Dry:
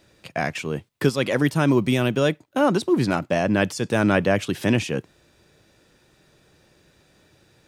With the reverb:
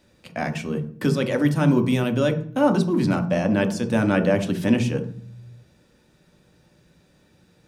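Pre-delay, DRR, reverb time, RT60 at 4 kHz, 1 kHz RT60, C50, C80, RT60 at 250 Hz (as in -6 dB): 3 ms, 5.0 dB, 0.50 s, 0.45 s, 0.45 s, 11.5 dB, 16.5 dB, 0.95 s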